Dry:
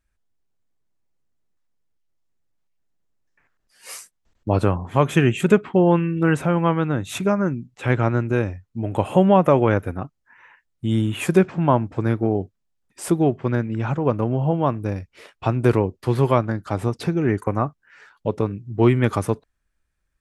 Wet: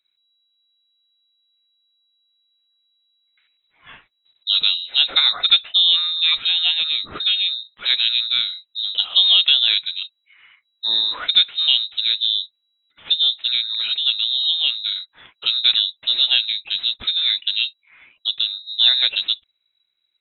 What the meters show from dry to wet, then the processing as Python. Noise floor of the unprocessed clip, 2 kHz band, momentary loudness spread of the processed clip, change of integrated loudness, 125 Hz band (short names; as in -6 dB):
-74 dBFS, +2.0 dB, 10 LU, +4.0 dB, under -35 dB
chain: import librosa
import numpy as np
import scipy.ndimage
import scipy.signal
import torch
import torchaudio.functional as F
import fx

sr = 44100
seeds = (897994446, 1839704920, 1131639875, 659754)

y = fx.freq_invert(x, sr, carrier_hz=3900)